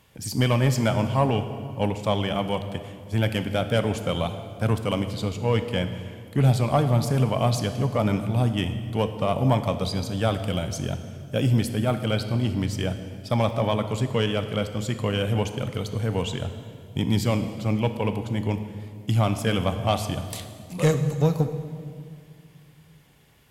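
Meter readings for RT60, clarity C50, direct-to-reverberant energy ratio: 2.2 s, 9.5 dB, 8.5 dB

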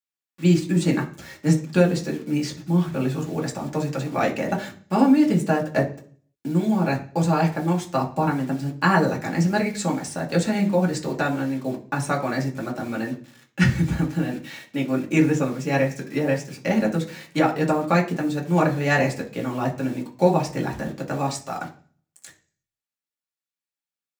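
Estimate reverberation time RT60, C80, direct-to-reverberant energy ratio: 0.40 s, 17.0 dB, −1.5 dB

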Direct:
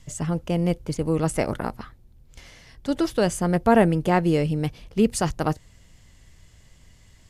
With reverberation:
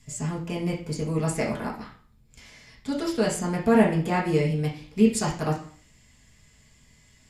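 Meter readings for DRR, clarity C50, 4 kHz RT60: −3.5 dB, 7.0 dB, 0.40 s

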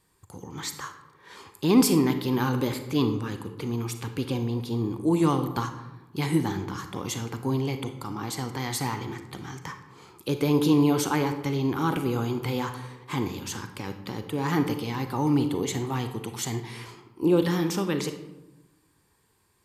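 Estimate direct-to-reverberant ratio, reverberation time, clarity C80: 7.5 dB, 1.0 s, 12.0 dB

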